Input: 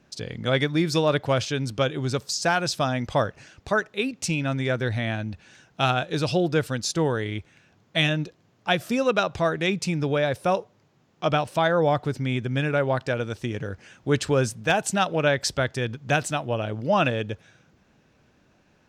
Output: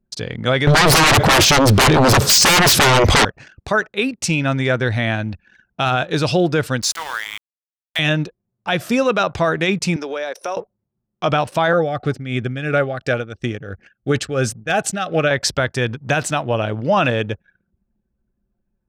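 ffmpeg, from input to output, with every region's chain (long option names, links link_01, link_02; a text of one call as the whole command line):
ffmpeg -i in.wav -filter_complex "[0:a]asettb=1/sr,asplit=3[link_01][link_02][link_03];[link_01]atrim=end=0.674[link_04];[link_02]atrim=start=0.67:end=3.25,asetpts=PTS-STARTPTS,afade=type=in:duration=0.004:curve=qsin,afade=type=out:start_time=2.576:duration=0.004:curve=qsin,lowshelf=frequency=260:gain=6.5,aeval=exprs='0.447*sin(PI/2*10*val(0)/0.447)':channel_layout=same[link_05];[link_03]atrim=start=3.246[link_06];[link_04][link_05]acrossfade=duration=0.004:curve1=hsin:curve2=qsin[link_07];[link_07][link_06]acrossfade=duration=0.004:curve1=qsin:curve2=hsin,asettb=1/sr,asplit=3[link_08][link_09][link_10];[link_08]atrim=end=6.824[link_11];[link_09]atrim=start=6.82:end=7.99,asetpts=PTS-STARTPTS,afade=type=in:duration=0.004:curve=qsin,afade=type=out:start_time=1.166:duration=0.004:curve=qsin,highpass=frequency=930:width=0.5412,highpass=frequency=930:width=1.3066,highshelf=frequency=9400:gain=7,aeval=exprs='val(0)*gte(abs(val(0)),0.0168)':channel_layout=same[link_12];[link_10]atrim=start=7.986[link_13];[link_11][link_12]acrossfade=duration=0.004:curve1=hsin:curve2=qsin[link_14];[link_14][link_13]acrossfade=duration=0.004:curve1=qsin:curve2=hsin,asettb=1/sr,asplit=3[link_15][link_16][link_17];[link_15]atrim=end=9.964[link_18];[link_16]atrim=start=9.96:end=10.57,asetpts=PTS-STARTPTS,afade=type=in:duration=0.004:curve=qsin,afade=type=out:start_time=0.606:duration=0.004:curve=qsin,highpass=frequency=320:width=0.5412,highpass=frequency=320:width=1.3066,equalizer=frequency=5800:width_type=o:width=0.25:gain=11.5,acompressor=threshold=-32dB:ratio=3:attack=3.2:release=140:knee=1:detection=peak[link_19];[link_17]atrim=start=10.566[link_20];[link_18][link_19]acrossfade=duration=0.004:curve1=hsin:curve2=qsin[link_21];[link_21][link_20]acrossfade=duration=0.004:curve1=qsin:curve2=hsin,asettb=1/sr,asplit=3[link_22][link_23][link_24];[link_22]atrim=end=11.734[link_25];[link_23]atrim=start=11.73:end=15.31,asetpts=PTS-STARTPTS,afade=type=in:duration=0.004:curve=qsin,afade=type=out:start_time=3.576:duration=0.004:curve=qsin,tremolo=f=2.9:d=0.68,asuperstop=centerf=960:order=20:qfactor=4.4[link_26];[link_24]atrim=start=15.306[link_27];[link_25][link_26]acrossfade=duration=0.004:curve1=hsin:curve2=qsin[link_28];[link_28][link_27]acrossfade=duration=0.004:curve1=qsin:curve2=hsin,equalizer=frequency=1400:width_type=o:width=2:gain=3,alimiter=limit=-14dB:level=0:latency=1:release=18,anlmdn=0.0398,volume=6.5dB" out.wav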